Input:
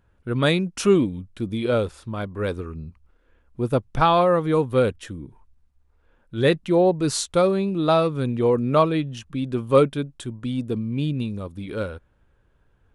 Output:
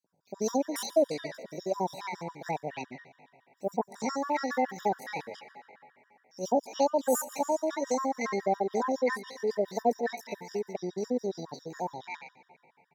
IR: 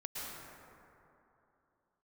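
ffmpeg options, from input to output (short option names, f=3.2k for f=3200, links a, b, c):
-filter_complex "[0:a]highpass=f=120:w=0.5412,highpass=f=120:w=1.3066,equalizer=f=130:t=q:w=4:g=-7,equalizer=f=200:t=q:w=4:g=-9,equalizer=f=740:t=q:w=4:g=-6,equalizer=f=1.8k:t=q:w=4:g=-8,equalizer=f=4.3k:t=q:w=4:g=5,lowpass=f=9.7k:w=0.5412,lowpass=f=9.7k:w=1.3066,acrossover=split=680|3200[a][b][c];[a]adelay=70[d];[b]adelay=340[e];[d][e][c]amix=inputs=3:normalize=0,asplit=2[f][g];[1:a]atrim=start_sample=2205,highshelf=f=2.4k:g=9.5[h];[g][h]afir=irnorm=-1:irlink=0,volume=-19.5dB[i];[f][i]amix=inputs=2:normalize=0,acrossover=split=390|3000[j][k][l];[k]acompressor=threshold=-31dB:ratio=8[m];[j][m][l]amix=inputs=3:normalize=0,highshelf=f=4.6k:g=-7.5,asetrate=72056,aresample=44100,atempo=0.612027,afftfilt=real='re*gt(sin(2*PI*7.2*pts/sr)*(1-2*mod(floor(b*sr/1024/960),2)),0)':imag='im*gt(sin(2*PI*7.2*pts/sr)*(1-2*mod(floor(b*sr/1024/960),2)),0)':win_size=1024:overlap=0.75"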